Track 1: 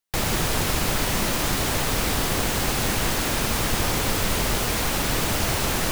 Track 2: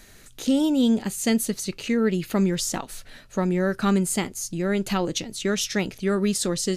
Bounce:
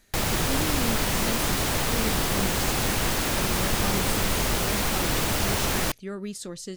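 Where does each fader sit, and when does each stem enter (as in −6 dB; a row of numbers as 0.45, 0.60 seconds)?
−1.5, −11.5 decibels; 0.00, 0.00 seconds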